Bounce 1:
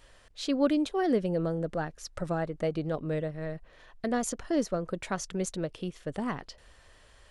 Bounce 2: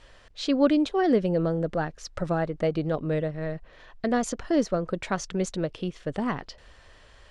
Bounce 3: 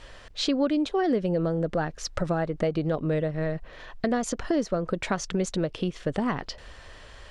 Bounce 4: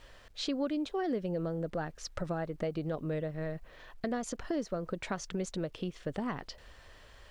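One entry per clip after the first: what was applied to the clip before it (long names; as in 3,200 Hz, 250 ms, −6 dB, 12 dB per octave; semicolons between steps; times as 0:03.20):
low-pass filter 6,100 Hz 12 dB per octave; level +4.5 dB
downward compressor 3 to 1, threshold −31 dBFS, peak gain reduction 12 dB; level +6.5 dB
bit reduction 11 bits; level −8.5 dB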